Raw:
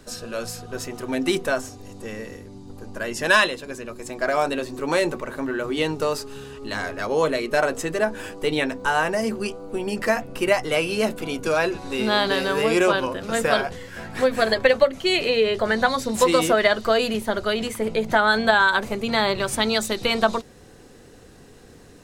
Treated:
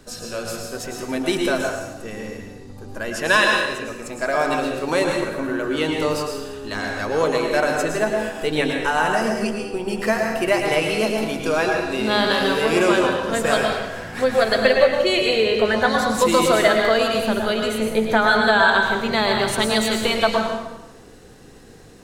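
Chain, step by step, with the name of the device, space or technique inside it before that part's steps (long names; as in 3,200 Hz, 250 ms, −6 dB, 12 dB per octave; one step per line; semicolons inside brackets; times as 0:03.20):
0:18.37–0:19.12: parametric band 11,000 Hz −12.5 dB 0.26 octaves
bathroom (convolution reverb RT60 1.0 s, pre-delay 100 ms, DRR 1 dB)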